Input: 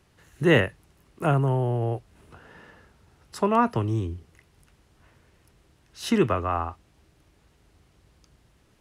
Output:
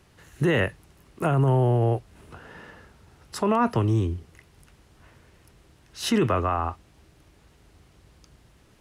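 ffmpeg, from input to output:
-af "alimiter=limit=-18dB:level=0:latency=1:release=37,volume=4.5dB"

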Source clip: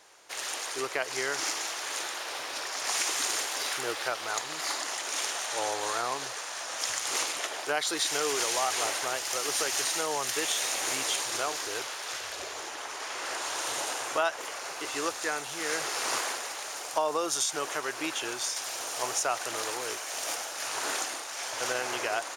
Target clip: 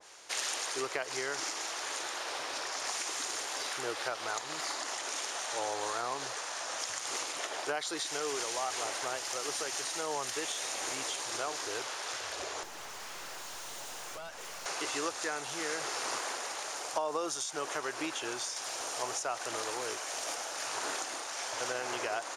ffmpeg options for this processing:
-filter_complex "[0:a]lowpass=8.2k,highshelf=f=3.9k:g=7.5,acompressor=threshold=-31dB:ratio=3,asettb=1/sr,asplit=3[a][b][c];[a]atrim=end=12.634[d];[b]atrim=start=12.63:end=14.66,asetpts=PTS-STARTPTS,afade=t=in:d=0.004:c=qsin,afade=t=out:st=2.026:d=0.004:c=qsin,aeval=exprs='(tanh(126*val(0)+0.55)-tanh(0.55))/126':c=same[e];[c]atrim=start=14.656[f];[d][e]acrossfade=d=0.004:c1=hsin:c2=qsin[g];[g][f]acrossfade=d=0.004:c1=qsin:c2=hsin,adynamicequalizer=threshold=0.00447:dfrequency=1700:dqfactor=0.7:tfrequency=1700:tqfactor=0.7:attack=5:release=100:ratio=0.375:range=3:mode=cutabove:tftype=highshelf,volume=1dB"

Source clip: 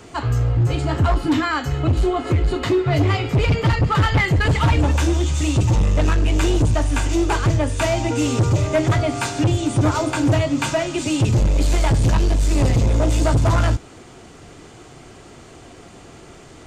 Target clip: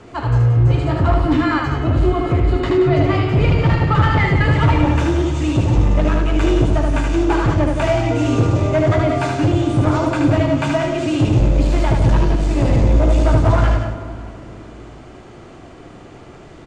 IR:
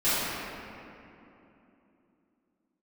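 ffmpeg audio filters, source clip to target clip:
-filter_complex "[0:a]aemphasis=mode=reproduction:type=75fm,aecho=1:1:75.8|177.8:0.631|0.398,asplit=2[a][b];[1:a]atrim=start_sample=2205[c];[b][c]afir=irnorm=-1:irlink=0,volume=-24.5dB[d];[a][d]amix=inputs=2:normalize=0"

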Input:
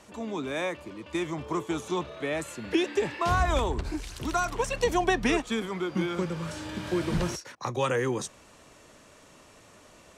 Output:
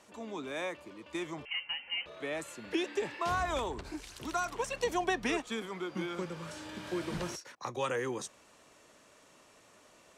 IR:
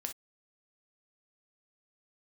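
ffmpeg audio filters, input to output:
-filter_complex "[0:a]lowshelf=f=150:g=-11.5,asettb=1/sr,asplit=3[a][b][c];[a]atrim=end=1.454[d];[b]atrim=start=1.45:end=2.06,asetpts=PTS-STARTPTS,afade=t=in:d=0.004:c=qsin,afade=t=out:st=0.606:d=0.004:c=qsin,lowpass=f=2.7k:t=q:w=0.5098,lowpass=f=2.7k:t=q:w=0.6013,lowpass=f=2.7k:t=q:w=0.9,lowpass=f=2.7k:t=q:w=2.563,afreqshift=-3200[e];[c]atrim=start=2.056[f];[d][e]acrossfade=d=0.004:c1=hsin:c2=qsin[g];[g][f]acrossfade=d=0.004:c1=qsin:c2=hsin,volume=-5.5dB"

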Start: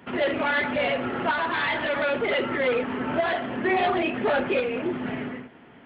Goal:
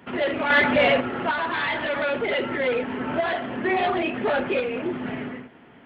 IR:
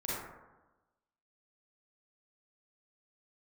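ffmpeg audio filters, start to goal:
-filter_complex "[0:a]asettb=1/sr,asplit=3[a][b][c];[a]atrim=end=0.504[d];[b]atrim=start=0.5:end=1.01,asetpts=PTS-STARTPTS,afade=t=in:d=0.004:c=qsin,afade=t=out:st=0.506:d=0.004:c=qsin,acontrast=66[e];[c]atrim=start=1.006[f];[d][e]acrossfade=d=0.004:c1=hsin:c2=qsin[g];[g][f]acrossfade=d=0.004:c1=qsin:c2=hsin,asettb=1/sr,asplit=3[h][i][j];[h]atrim=end=2.244[k];[i]atrim=start=2.24:end=2.99,asetpts=PTS-STARTPTS,afade=t=in:d=0.004:c=qsin,afade=t=out:st=0.746:d=0.004:c=qsin,bandreject=f=1.2k:w=7.4[l];[j]atrim=start=2.986[m];[k][l]acrossfade=d=0.004:c1=hsin:c2=qsin[n];[n][m]acrossfade=d=0.004:c1=qsin:c2=hsin"

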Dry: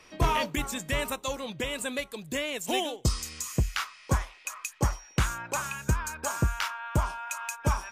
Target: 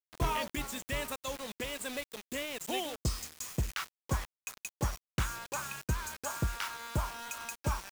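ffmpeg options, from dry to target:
-af "acrusher=bits=5:mix=0:aa=0.000001,volume=-6.5dB"

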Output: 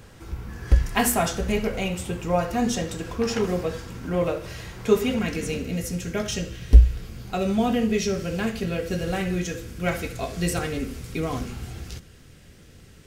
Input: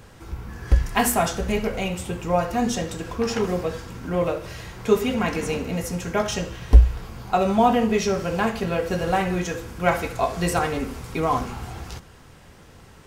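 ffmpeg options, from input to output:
-af "asetnsamples=n=441:p=0,asendcmd='5.19 equalizer g -14.5',equalizer=f=930:t=o:w=1.1:g=-3.5"

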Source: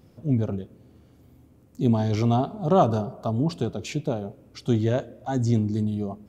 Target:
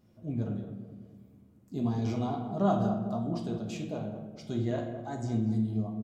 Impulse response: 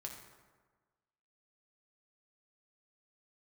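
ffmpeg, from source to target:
-filter_complex "[0:a]asplit=2[a][b];[b]adelay=218,lowpass=f=890:p=1,volume=-8dB,asplit=2[c][d];[d]adelay=218,lowpass=f=890:p=1,volume=0.52,asplit=2[e][f];[f]adelay=218,lowpass=f=890:p=1,volume=0.52,asplit=2[g][h];[h]adelay=218,lowpass=f=890:p=1,volume=0.52,asplit=2[i][j];[j]adelay=218,lowpass=f=890:p=1,volume=0.52,asplit=2[k][l];[l]adelay=218,lowpass=f=890:p=1,volume=0.52[m];[a][c][e][g][i][k][m]amix=inputs=7:normalize=0[n];[1:a]atrim=start_sample=2205,asetrate=70560,aresample=44100[o];[n][o]afir=irnorm=-1:irlink=0,asetrate=45938,aresample=44100,volume=-2dB"

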